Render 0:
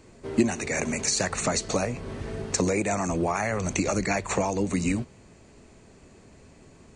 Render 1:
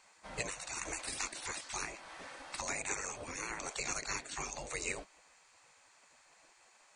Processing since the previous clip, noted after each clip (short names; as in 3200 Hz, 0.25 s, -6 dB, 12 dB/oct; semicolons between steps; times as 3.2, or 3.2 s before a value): notch 2900 Hz, Q 26; spectral gate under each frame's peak -15 dB weak; gain -3 dB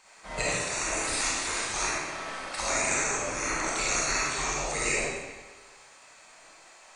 digital reverb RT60 1.3 s, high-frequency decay 0.9×, pre-delay 5 ms, DRR -6.5 dB; gain +4.5 dB